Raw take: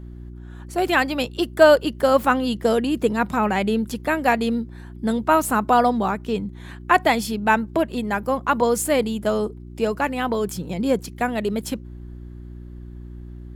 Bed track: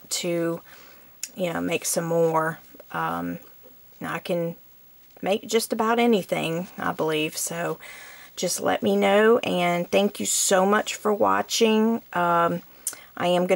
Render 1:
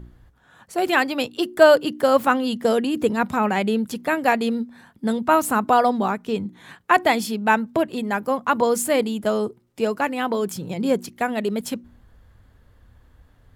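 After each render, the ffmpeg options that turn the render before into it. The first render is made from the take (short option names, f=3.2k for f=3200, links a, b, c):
-af "bandreject=f=60:t=h:w=4,bandreject=f=120:t=h:w=4,bandreject=f=180:t=h:w=4,bandreject=f=240:t=h:w=4,bandreject=f=300:t=h:w=4,bandreject=f=360:t=h:w=4"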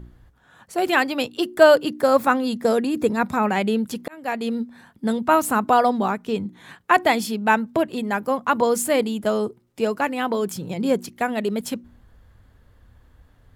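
-filter_complex "[0:a]asettb=1/sr,asplit=3[a][b][c];[a]atrim=end=1.884[d];[b]atrim=start=1.88:end=3.49,asetpts=PTS-STARTPTS,afade=t=in:d=0.004:c=qsin,afade=t=out:st=1.606:d=0.004:c=qsin,bandreject=f=3k:w=5.9[e];[c]atrim=start=3.486[f];[d][e]acrossfade=d=0.004:c1=hsin:c2=qsin[g];[g][f]acrossfade=d=0.004:c1=qsin:c2=hsin,asplit=2[h][i];[h]atrim=end=4.08,asetpts=PTS-STARTPTS,afade=t=out:st=4.076:d=0.004:c=hsin[j];[i]atrim=start=4.08,asetpts=PTS-STARTPTS,afade=t=in:d=0.54[k];[j][k]concat=n=2:v=0:a=1"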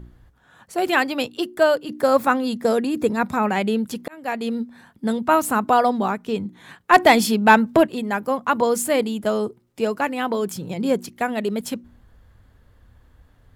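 -filter_complex "[0:a]asplit=3[a][b][c];[a]afade=t=out:st=6.92:d=0.02[d];[b]acontrast=64,afade=t=in:st=6.92:d=0.02,afade=t=out:st=7.86:d=0.02[e];[c]afade=t=in:st=7.86:d=0.02[f];[d][e][f]amix=inputs=3:normalize=0,asplit=2[g][h];[g]atrim=end=1.89,asetpts=PTS-STARTPTS,afade=t=out:st=1.25:d=0.64:silence=0.375837[i];[h]atrim=start=1.89,asetpts=PTS-STARTPTS,afade=t=in:d=0.004:c=hsin:silence=0.375837[j];[i][j]concat=n=2:v=0:a=1"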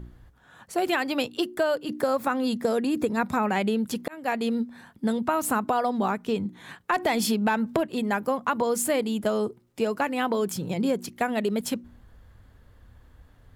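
-af "alimiter=limit=-9.5dB:level=0:latency=1:release=118,acompressor=threshold=-21dB:ratio=6"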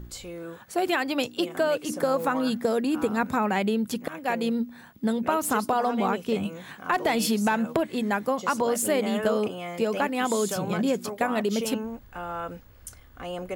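-filter_complex "[1:a]volume=-13dB[a];[0:a][a]amix=inputs=2:normalize=0"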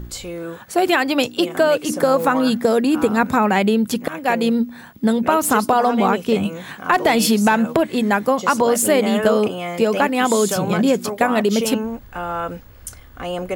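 -af "volume=8.5dB,alimiter=limit=-3dB:level=0:latency=1"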